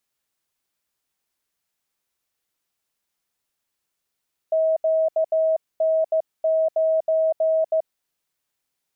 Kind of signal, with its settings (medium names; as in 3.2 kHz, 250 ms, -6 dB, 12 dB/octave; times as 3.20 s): Morse "QN9" 15 wpm 640 Hz -16.5 dBFS